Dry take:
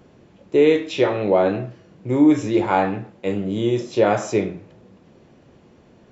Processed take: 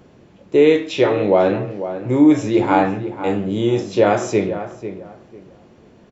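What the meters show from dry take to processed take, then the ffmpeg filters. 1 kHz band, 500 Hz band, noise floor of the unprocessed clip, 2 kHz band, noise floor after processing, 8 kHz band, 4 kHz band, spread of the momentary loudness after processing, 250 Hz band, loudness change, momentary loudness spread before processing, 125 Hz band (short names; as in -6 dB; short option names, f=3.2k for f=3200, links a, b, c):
+3.0 dB, +3.0 dB, -52 dBFS, +2.5 dB, -49 dBFS, n/a, +2.5 dB, 13 LU, +3.0 dB, +2.5 dB, 12 LU, +3.0 dB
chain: -filter_complex "[0:a]asplit=2[a][b];[b]adelay=496,lowpass=f=2k:p=1,volume=-11dB,asplit=2[c][d];[d]adelay=496,lowpass=f=2k:p=1,volume=0.24,asplit=2[e][f];[f]adelay=496,lowpass=f=2k:p=1,volume=0.24[g];[a][c][e][g]amix=inputs=4:normalize=0,volume=2.5dB"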